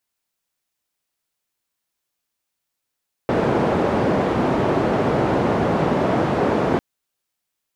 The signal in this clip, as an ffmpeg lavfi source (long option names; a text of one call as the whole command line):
ffmpeg -f lavfi -i "anoisesrc=color=white:duration=3.5:sample_rate=44100:seed=1,highpass=frequency=110,lowpass=frequency=580,volume=2dB" out.wav